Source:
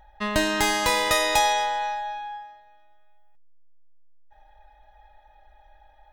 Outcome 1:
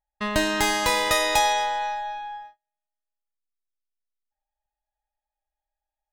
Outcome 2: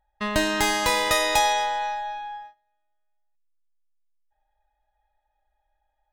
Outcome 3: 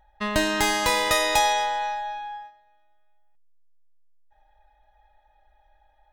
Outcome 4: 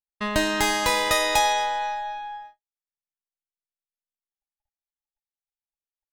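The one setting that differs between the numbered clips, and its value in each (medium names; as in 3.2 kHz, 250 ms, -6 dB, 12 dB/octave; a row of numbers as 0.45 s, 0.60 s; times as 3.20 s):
gate, range: -35 dB, -20 dB, -7 dB, -59 dB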